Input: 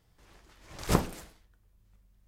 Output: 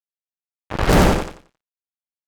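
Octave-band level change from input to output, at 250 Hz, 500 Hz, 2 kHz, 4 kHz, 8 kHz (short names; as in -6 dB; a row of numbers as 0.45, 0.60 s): +14.0, +16.0, +17.5, +13.5, +9.5 dB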